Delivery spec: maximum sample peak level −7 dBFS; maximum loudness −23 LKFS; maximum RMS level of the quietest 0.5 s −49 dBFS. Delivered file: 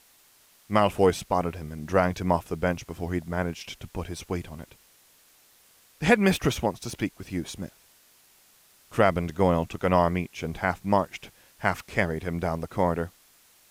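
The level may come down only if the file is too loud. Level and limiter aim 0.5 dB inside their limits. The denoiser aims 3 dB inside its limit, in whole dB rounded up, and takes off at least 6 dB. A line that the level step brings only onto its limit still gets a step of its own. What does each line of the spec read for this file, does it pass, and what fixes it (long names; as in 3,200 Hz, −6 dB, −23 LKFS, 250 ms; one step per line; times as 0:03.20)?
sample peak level −6.0 dBFS: out of spec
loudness −27.0 LKFS: in spec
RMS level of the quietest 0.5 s −59 dBFS: in spec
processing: brickwall limiter −7.5 dBFS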